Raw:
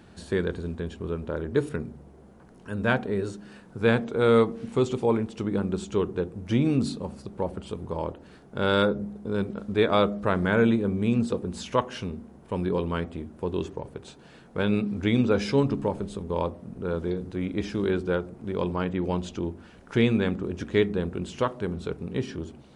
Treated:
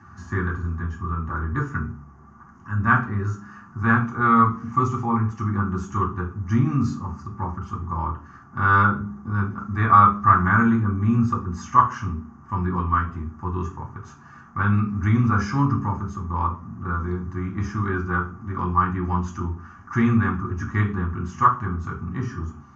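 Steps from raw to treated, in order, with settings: EQ curve 110 Hz 0 dB, 180 Hz -2 dB, 340 Hz -8 dB, 550 Hz -22 dB, 1200 Hz +14 dB, 1800 Hz 0 dB, 2600 Hz -8 dB, 3900 Hz -23 dB, 6400 Hz -4 dB, 9800 Hz -30 dB; reverb RT60 0.30 s, pre-delay 3 ms, DRR -1 dB; gain -1.5 dB

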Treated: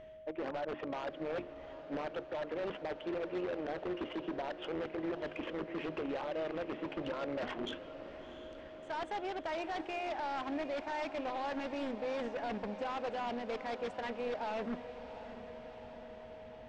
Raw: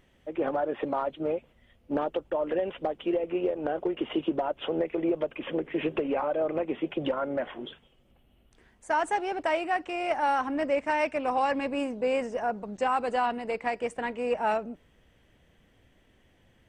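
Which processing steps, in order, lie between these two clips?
notches 50/100/150/200/250/300/350 Hz; limiter -22.5 dBFS, peak gain reduction 6.5 dB; reverse; compressor 8:1, threshold -42 dBFS, peak gain reduction 15.5 dB; reverse; added harmonics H 7 -23 dB, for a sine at -32 dBFS; whine 630 Hz -59 dBFS; wavefolder -40 dBFS; air absorption 150 m; diffused feedback echo 0.713 s, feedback 67%, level -12.5 dB; gain +9.5 dB

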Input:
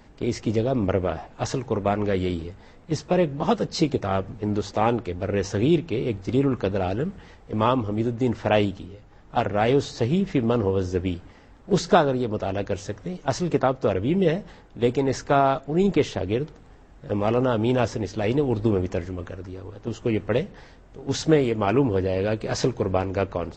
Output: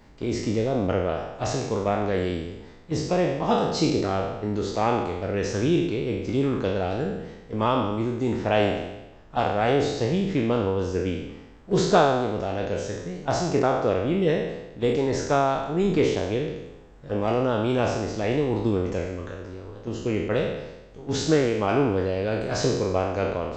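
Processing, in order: spectral trails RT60 1.01 s; gain -3.5 dB

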